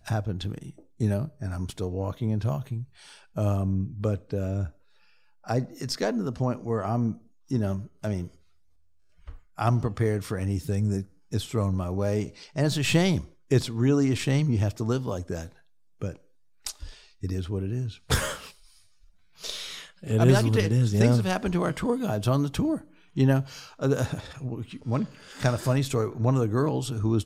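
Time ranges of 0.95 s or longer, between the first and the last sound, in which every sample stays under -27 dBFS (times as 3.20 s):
8.24–9.59 s
18.34–19.44 s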